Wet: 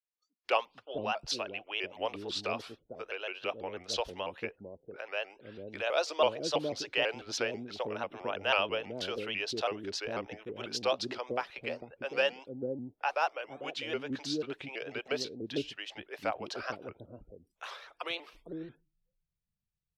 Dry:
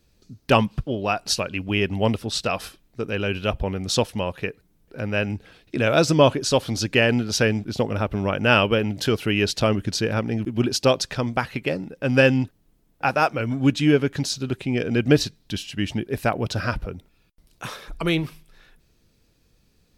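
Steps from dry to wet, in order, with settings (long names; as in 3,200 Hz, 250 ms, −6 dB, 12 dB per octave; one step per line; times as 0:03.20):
three-way crossover with the lows and the highs turned down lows −21 dB, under 390 Hz, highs −18 dB, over 5,100 Hz
multiband delay without the direct sound highs, lows 450 ms, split 430 Hz
dynamic equaliser 1,700 Hz, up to −7 dB, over −38 dBFS, Q 1.2
noise reduction from a noise print of the clip's start 27 dB
pitch modulation by a square or saw wave saw up 6.1 Hz, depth 160 cents
level −6 dB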